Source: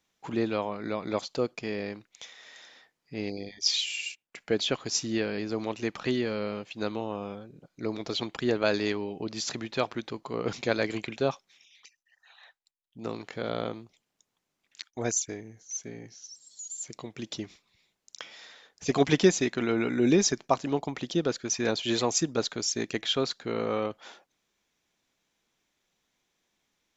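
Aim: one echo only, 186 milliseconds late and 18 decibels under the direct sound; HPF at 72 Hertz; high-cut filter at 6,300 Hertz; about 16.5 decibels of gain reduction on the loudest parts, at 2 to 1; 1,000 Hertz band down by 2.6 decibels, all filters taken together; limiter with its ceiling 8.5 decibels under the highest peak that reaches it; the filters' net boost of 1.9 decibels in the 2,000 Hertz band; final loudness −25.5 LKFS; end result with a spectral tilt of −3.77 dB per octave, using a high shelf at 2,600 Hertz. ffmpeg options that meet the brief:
ffmpeg -i in.wav -af "highpass=72,lowpass=6300,equalizer=frequency=1000:width_type=o:gain=-4.5,equalizer=frequency=2000:width_type=o:gain=6,highshelf=frequency=2600:gain=-5,acompressor=threshold=-48dB:ratio=2,alimiter=level_in=8dB:limit=-24dB:level=0:latency=1,volume=-8dB,aecho=1:1:186:0.126,volume=19.5dB" out.wav

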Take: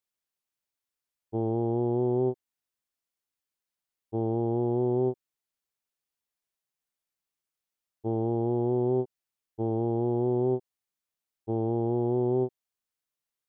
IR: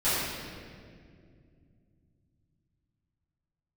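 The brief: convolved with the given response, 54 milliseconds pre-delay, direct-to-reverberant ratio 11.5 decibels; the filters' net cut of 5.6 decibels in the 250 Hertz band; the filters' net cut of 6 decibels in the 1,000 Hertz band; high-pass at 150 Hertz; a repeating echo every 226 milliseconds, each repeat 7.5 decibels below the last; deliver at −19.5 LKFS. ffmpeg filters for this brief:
-filter_complex "[0:a]highpass=150,equalizer=frequency=250:width_type=o:gain=-8,equalizer=frequency=1000:width_type=o:gain=-8,aecho=1:1:226|452|678|904|1130:0.422|0.177|0.0744|0.0312|0.0131,asplit=2[link_01][link_02];[1:a]atrim=start_sample=2205,adelay=54[link_03];[link_02][link_03]afir=irnorm=-1:irlink=0,volume=-25dB[link_04];[link_01][link_04]amix=inputs=2:normalize=0,volume=14dB"

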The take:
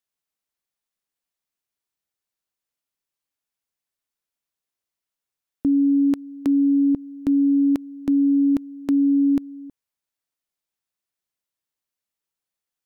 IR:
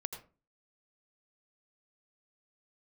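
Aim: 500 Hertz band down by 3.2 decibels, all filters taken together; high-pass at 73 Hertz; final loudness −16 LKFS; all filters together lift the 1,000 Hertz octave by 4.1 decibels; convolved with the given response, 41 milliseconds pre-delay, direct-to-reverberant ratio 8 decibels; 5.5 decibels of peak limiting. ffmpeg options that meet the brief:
-filter_complex "[0:a]highpass=73,equalizer=frequency=500:width_type=o:gain=-8.5,equalizer=frequency=1000:width_type=o:gain=8,alimiter=limit=-19.5dB:level=0:latency=1,asplit=2[link_01][link_02];[1:a]atrim=start_sample=2205,adelay=41[link_03];[link_02][link_03]afir=irnorm=-1:irlink=0,volume=-7.5dB[link_04];[link_01][link_04]amix=inputs=2:normalize=0,volume=13dB"

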